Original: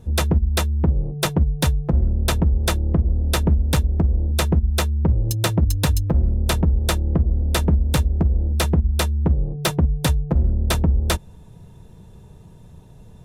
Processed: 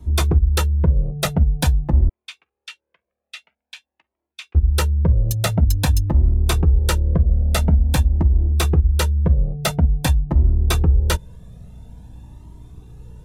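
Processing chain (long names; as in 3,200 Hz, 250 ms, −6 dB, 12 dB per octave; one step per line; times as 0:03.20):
mains hum 60 Hz, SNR 26 dB
0:02.09–0:04.55: four-pole ladder band-pass 3,000 Hz, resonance 50%
flanger whose copies keep moving one way rising 0.48 Hz
level +4.5 dB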